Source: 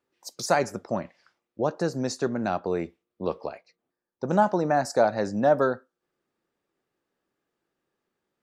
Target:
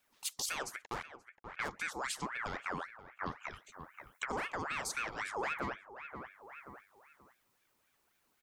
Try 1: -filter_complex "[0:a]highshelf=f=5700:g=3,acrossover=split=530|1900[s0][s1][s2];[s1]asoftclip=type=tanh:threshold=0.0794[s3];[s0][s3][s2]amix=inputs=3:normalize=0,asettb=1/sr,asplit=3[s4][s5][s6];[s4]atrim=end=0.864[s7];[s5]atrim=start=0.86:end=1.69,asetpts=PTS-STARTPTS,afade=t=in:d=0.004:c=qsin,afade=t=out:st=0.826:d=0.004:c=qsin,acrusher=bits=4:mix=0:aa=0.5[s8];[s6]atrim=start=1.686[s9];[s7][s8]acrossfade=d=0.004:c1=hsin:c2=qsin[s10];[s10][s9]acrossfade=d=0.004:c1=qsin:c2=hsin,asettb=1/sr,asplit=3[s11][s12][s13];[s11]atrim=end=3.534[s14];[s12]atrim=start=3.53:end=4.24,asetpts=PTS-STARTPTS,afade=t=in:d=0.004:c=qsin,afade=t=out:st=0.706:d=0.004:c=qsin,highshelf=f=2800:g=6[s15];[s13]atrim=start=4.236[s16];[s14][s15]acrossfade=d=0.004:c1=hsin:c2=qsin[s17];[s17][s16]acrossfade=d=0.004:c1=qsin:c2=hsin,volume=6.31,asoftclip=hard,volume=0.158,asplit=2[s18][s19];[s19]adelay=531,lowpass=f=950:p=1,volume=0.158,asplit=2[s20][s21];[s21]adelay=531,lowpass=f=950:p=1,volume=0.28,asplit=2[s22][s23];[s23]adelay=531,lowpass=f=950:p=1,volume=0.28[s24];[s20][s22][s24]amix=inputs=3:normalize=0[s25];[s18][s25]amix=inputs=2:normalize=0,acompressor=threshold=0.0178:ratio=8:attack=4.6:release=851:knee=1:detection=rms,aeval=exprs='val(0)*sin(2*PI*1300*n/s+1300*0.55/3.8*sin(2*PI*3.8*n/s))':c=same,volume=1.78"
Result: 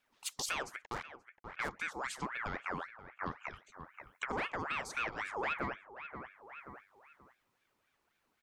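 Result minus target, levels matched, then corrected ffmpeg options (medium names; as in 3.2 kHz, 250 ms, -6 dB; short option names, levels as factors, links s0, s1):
saturation: distortion -8 dB; 8 kHz band -3.5 dB
-filter_complex "[0:a]highshelf=f=5700:g=15,acrossover=split=530|1900[s0][s1][s2];[s1]asoftclip=type=tanh:threshold=0.0237[s3];[s0][s3][s2]amix=inputs=3:normalize=0,asettb=1/sr,asplit=3[s4][s5][s6];[s4]atrim=end=0.864[s7];[s5]atrim=start=0.86:end=1.69,asetpts=PTS-STARTPTS,afade=t=in:d=0.004:c=qsin,afade=t=out:st=0.826:d=0.004:c=qsin,acrusher=bits=4:mix=0:aa=0.5[s8];[s6]atrim=start=1.686[s9];[s7][s8]acrossfade=d=0.004:c1=hsin:c2=qsin[s10];[s10][s9]acrossfade=d=0.004:c1=qsin:c2=hsin,asettb=1/sr,asplit=3[s11][s12][s13];[s11]atrim=end=3.534[s14];[s12]atrim=start=3.53:end=4.24,asetpts=PTS-STARTPTS,afade=t=in:d=0.004:c=qsin,afade=t=out:st=0.706:d=0.004:c=qsin,highshelf=f=2800:g=6[s15];[s13]atrim=start=4.236[s16];[s14][s15]acrossfade=d=0.004:c1=hsin:c2=qsin[s17];[s17][s16]acrossfade=d=0.004:c1=qsin:c2=hsin,volume=6.31,asoftclip=hard,volume=0.158,asplit=2[s18][s19];[s19]adelay=531,lowpass=f=950:p=1,volume=0.158,asplit=2[s20][s21];[s21]adelay=531,lowpass=f=950:p=1,volume=0.28,asplit=2[s22][s23];[s23]adelay=531,lowpass=f=950:p=1,volume=0.28[s24];[s20][s22][s24]amix=inputs=3:normalize=0[s25];[s18][s25]amix=inputs=2:normalize=0,acompressor=threshold=0.0178:ratio=8:attack=4.6:release=851:knee=1:detection=rms,aeval=exprs='val(0)*sin(2*PI*1300*n/s+1300*0.55/3.8*sin(2*PI*3.8*n/s))':c=same,volume=1.78"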